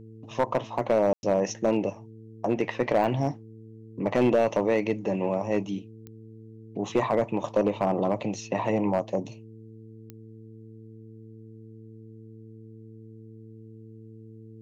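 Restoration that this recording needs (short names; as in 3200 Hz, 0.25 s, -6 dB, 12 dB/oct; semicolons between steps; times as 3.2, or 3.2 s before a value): clip repair -15.5 dBFS; de-click; de-hum 110.9 Hz, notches 4; room tone fill 1.13–1.23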